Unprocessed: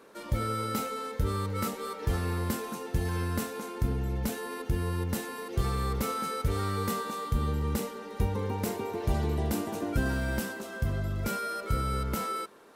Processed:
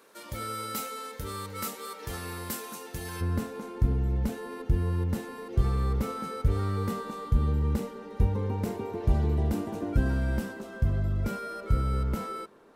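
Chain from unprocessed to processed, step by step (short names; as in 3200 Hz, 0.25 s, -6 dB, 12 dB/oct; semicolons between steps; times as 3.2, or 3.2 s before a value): tilt +2 dB/oct, from 3.2 s -2 dB/oct; gain -3 dB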